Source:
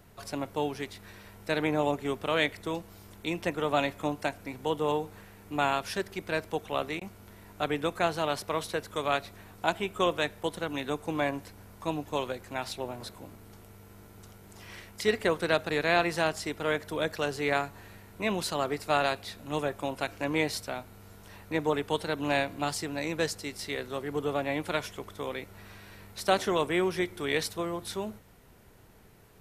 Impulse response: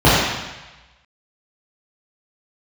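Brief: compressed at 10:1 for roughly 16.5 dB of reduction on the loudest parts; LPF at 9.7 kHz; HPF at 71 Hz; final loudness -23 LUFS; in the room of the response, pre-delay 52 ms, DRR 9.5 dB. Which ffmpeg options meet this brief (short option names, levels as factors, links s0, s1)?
-filter_complex "[0:a]highpass=71,lowpass=9700,acompressor=threshold=0.0141:ratio=10,asplit=2[s0][s1];[1:a]atrim=start_sample=2205,adelay=52[s2];[s1][s2]afir=irnorm=-1:irlink=0,volume=0.0119[s3];[s0][s3]amix=inputs=2:normalize=0,volume=9.44"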